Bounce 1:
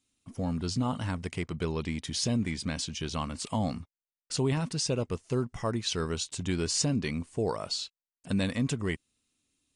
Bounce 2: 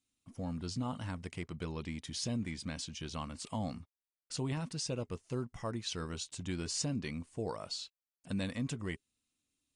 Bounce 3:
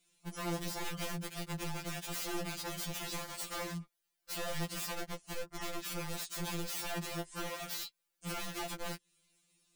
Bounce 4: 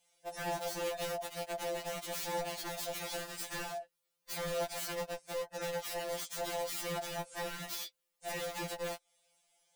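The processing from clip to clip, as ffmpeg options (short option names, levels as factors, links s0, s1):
-af "bandreject=f=410:w=12,volume=0.422"
-af "acompressor=threshold=0.00501:ratio=6,aeval=exprs='(mod(188*val(0)+1,2)-1)/188':c=same,afftfilt=real='re*2.83*eq(mod(b,8),0)':imag='im*2.83*eq(mod(b,8),0)':win_size=2048:overlap=0.75,volume=5.01"
-af "afftfilt=real='real(if(lt(b,1008),b+24*(1-2*mod(floor(b/24),2)),b),0)':imag='imag(if(lt(b,1008),b+24*(1-2*mod(floor(b/24),2)),b),0)':win_size=2048:overlap=0.75"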